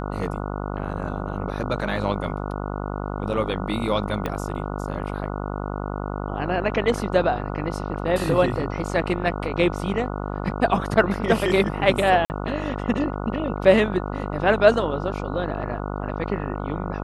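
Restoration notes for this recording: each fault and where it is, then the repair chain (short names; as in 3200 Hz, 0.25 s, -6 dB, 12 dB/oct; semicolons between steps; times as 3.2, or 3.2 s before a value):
buzz 50 Hz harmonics 29 -29 dBFS
4.26 pop -13 dBFS
12.25–12.3 gap 49 ms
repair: de-click; de-hum 50 Hz, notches 29; interpolate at 12.25, 49 ms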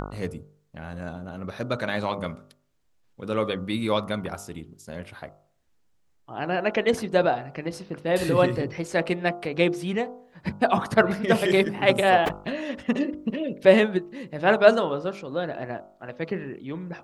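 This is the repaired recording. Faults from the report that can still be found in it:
4.26 pop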